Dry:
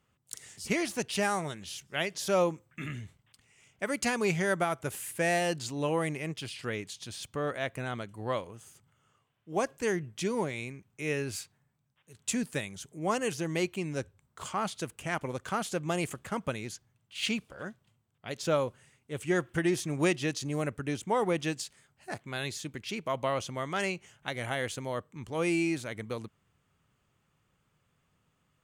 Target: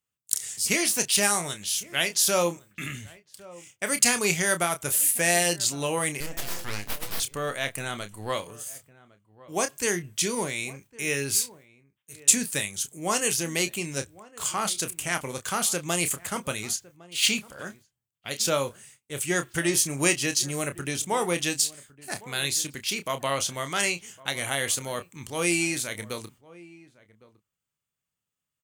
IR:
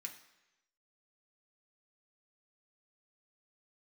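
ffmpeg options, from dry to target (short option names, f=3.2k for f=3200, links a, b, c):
-filter_complex "[0:a]crystalizer=i=5.5:c=0,asettb=1/sr,asplit=3[a][b][c];[a]atrim=end=6.204[d];[b]atrim=start=6.2:end=7.2,asetpts=PTS-STARTPTS,afade=t=in:d=0.004:c=qsin,afade=t=out:st=0.996:d=0.004:c=qsin,aeval=exprs='abs(val(0))':c=same[e];[c]atrim=start=7.196[f];[d][e]acrossfade=d=0.004:c1=hsin:c2=qsin[g];[g][f]acrossfade=d=0.004:c1=qsin:c2=hsin,asettb=1/sr,asplit=3[h][i][j];[h]atrim=end=19.774[k];[i]atrim=start=19.77:end=20.39,asetpts=PTS-STARTPTS,afade=t=in:d=0.004:c=qsin,afade=t=out:st=0.616:d=0.004:c=qsin,bandreject=f=3.6k:w=8[l];[j]atrim=start=20.386[m];[k][l]acrossfade=d=0.004:c1=hsin:c2=qsin[n];[n][m]acrossfade=d=0.004:c1=qsin:c2=hsin,agate=range=-21dB:threshold=-52dB:ratio=16:detection=peak,asplit=2[o][p];[p]adelay=29,volume=-9.5dB[q];[o][q]amix=inputs=2:normalize=0,asplit=2[r][s];[s]adelay=1108,volume=-20dB,highshelf=f=4k:g=-24.9[t];[r][t]amix=inputs=2:normalize=0"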